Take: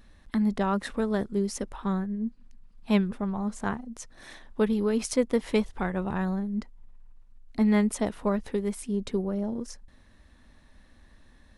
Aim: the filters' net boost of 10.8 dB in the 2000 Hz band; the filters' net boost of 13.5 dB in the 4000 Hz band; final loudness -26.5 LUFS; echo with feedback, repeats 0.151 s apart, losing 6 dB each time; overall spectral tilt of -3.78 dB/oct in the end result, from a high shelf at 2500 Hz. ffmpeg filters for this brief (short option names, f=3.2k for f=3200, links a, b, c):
-af "equalizer=f=2k:t=o:g=8,highshelf=f=2.5k:g=7.5,equalizer=f=4k:t=o:g=8,aecho=1:1:151|302|453|604|755|906:0.501|0.251|0.125|0.0626|0.0313|0.0157,volume=-1dB"